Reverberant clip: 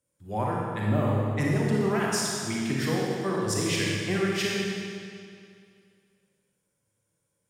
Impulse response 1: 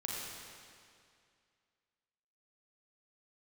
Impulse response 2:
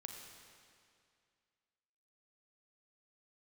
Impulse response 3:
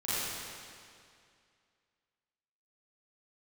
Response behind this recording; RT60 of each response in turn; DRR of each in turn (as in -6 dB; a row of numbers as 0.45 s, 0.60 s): 1; 2.3 s, 2.3 s, 2.3 s; -4.0 dB, 2.5 dB, -13.5 dB